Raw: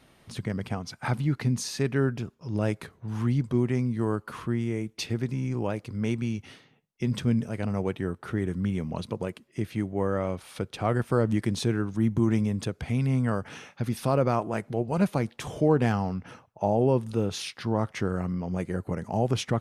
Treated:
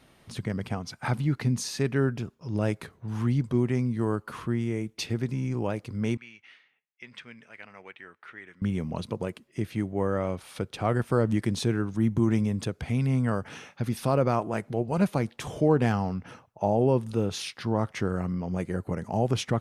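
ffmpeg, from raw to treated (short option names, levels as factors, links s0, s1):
-filter_complex "[0:a]asettb=1/sr,asplit=3[s0][s1][s2];[s0]atrim=end=6.174[s3];[s1]atrim=start=6.17:end=8.62,asetpts=PTS-STARTPTS,afade=t=in:d=0.004:c=qsin,afade=t=out:st=2.446:d=0.004:c=qsin,bandpass=f=2100:t=q:w=2[s4];[s2]atrim=start=8.616[s5];[s3][s4]acrossfade=d=0.004:c1=hsin:c2=qsin[s6];[s6][s5]acrossfade=d=0.004:c1=qsin:c2=hsin"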